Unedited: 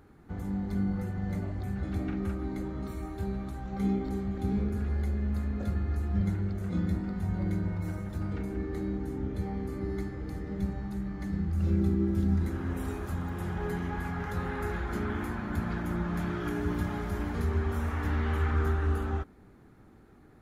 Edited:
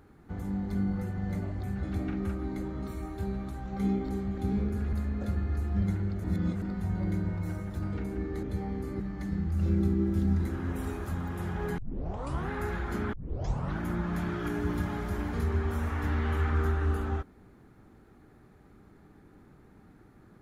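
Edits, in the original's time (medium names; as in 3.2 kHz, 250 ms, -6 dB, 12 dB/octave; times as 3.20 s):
4.93–5.32 s: delete
6.63–7.01 s: reverse
8.82–9.28 s: delete
9.85–11.01 s: delete
13.79 s: tape start 0.72 s
15.14 s: tape start 0.68 s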